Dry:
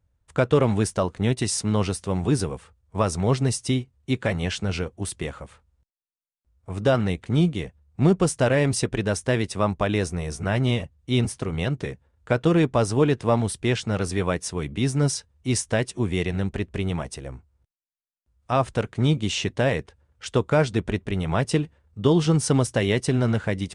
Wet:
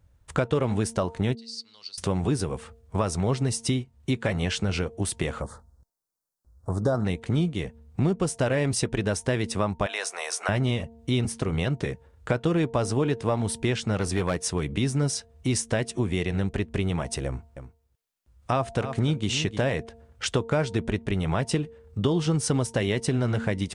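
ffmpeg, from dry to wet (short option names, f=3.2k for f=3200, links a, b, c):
-filter_complex "[0:a]asettb=1/sr,asplit=3[a][b][c];[a]atrim=end=1.354[d];[b]atrim=start=1.35:end=1.98,asetpts=PTS-STARTPTS,afade=t=in:d=0.004:c=qsin,afade=t=out:st=0.626:d=0.004:c=qsin,bandpass=f=4.5k:t=q:w=19[e];[c]atrim=start=1.976[f];[d][e]acrossfade=d=0.004:c1=hsin:c2=qsin[g];[g][f]acrossfade=d=0.004:c1=qsin:c2=hsin,asettb=1/sr,asplit=3[h][i][j];[h]atrim=end=5.424[k];[i]atrim=start=5.42:end=7.05,asetpts=PTS-STARTPTS,afade=t=in:d=0.004:c=qsin,afade=t=out:st=1.626:d=0.004:c=qsin,asuperstop=centerf=2600:order=4:qfactor=0.77[l];[j]atrim=start=7.046[m];[k][l]acrossfade=d=0.004:c1=hsin:c2=qsin[n];[n][m]acrossfade=d=0.004:c1=qsin:c2=hsin,asettb=1/sr,asplit=3[o][p][q];[o]atrim=end=9.864[r];[p]atrim=start=9.86:end=10.49,asetpts=PTS-STARTPTS,afade=t=in:d=0.004:c=qsin,afade=t=out:st=0.626:d=0.004:c=qsin,highpass=f=660:w=0.5412,highpass=f=660:w=1.3066[s];[q]atrim=start=10.486[t];[r][s]acrossfade=d=0.004:c1=hsin:c2=qsin[u];[u][t]acrossfade=d=0.004:c1=qsin:c2=hsin,asettb=1/sr,asplit=3[v][w][x];[v]atrim=end=13.974[y];[w]atrim=start=13.97:end=14.67,asetpts=PTS-STARTPTS,afade=t=in:d=0.004:c=qsin,afade=t=out:st=0.696:d=0.004:c=qsin,volume=17.5dB,asoftclip=hard,volume=-17.5dB[z];[x]atrim=start=14.666[aa];[y][z]acrossfade=d=0.004:c1=hsin:c2=qsin[ab];[ab][aa]acrossfade=d=0.004:c1=qsin:c2=hsin,asettb=1/sr,asplit=3[ac][ad][ae];[ac]atrim=end=17.264[af];[ad]atrim=start=17.26:end=19.61,asetpts=PTS-STARTPTS,afade=t=in:d=0.004:c=qsin,afade=t=out:st=2.346:d=0.004:c=qsin,aecho=1:1:304:0.211,atrim=end_sample=103635[ag];[ae]atrim=start=19.606[ah];[af][ag]acrossfade=d=0.004:c1=hsin:c2=qsin[ai];[ai][ah]acrossfade=d=0.004:c1=qsin:c2=hsin,bandreject=f=228.7:t=h:w=4,bandreject=f=457.4:t=h:w=4,bandreject=f=686.1:t=h:w=4,bandreject=f=914.8:t=h:w=4,acompressor=threshold=-35dB:ratio=3,volume=9dB"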